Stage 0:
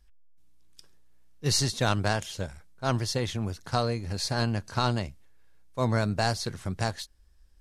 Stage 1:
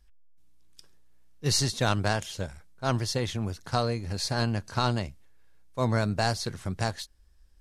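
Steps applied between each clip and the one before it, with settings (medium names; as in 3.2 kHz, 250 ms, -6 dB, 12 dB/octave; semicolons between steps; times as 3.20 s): no audible change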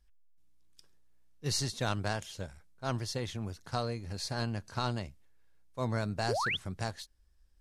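painted sound rise, 6.28–6.57 s, 330–3700 Hz -25 dBFS; trim -7 dB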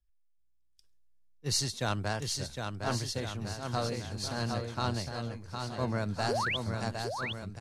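bouncing-ball echo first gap 760 ms, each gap 0.85×, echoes 5; three bands expanded up and down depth 40%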